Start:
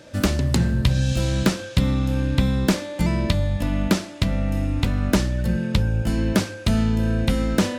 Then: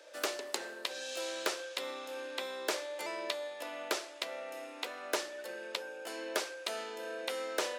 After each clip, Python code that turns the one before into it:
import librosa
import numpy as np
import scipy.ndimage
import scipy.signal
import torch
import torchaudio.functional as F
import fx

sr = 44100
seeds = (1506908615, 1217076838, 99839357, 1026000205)

y = scipy.signal.sosfilt(scipy.signal.butter(6, 400.0, 'highpass', fs=sr, output='sos'), x)
y = y * librosa.db_to_amplitude(-8.0)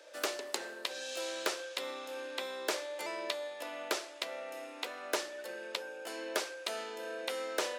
y = x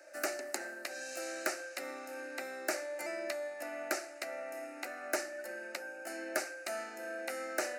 y = fx.fixed_phaser(x, sr, hz=680.0, stages=8)
y = y * librosa.db_to_amplitude(2.5)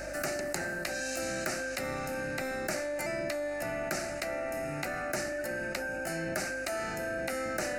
y = fx.octave_divider(x, sr, octaves=1, level_db=2.0)
y = fx.add_hum(y, sr, base_hz=50, snr_db=25)
y = fx.env_flatten(y, sr, amount_pct=70)
y = y * librosa.db_to_amplitude(-2.0)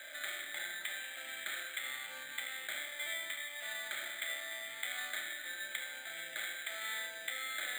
y = fx.bandpass_q(x, sr, hz=2100.0, q=4.2)
y = fx.rev_schroeder(y, sr, rt60_s=1.3, comb_ms=25, drr_db=1.0)
y = np.repeat(scipy.signal.resample_poly(y, 1, 8), 8)[:len(y)]
y = y * librosa.db_to_amplitude(2.0)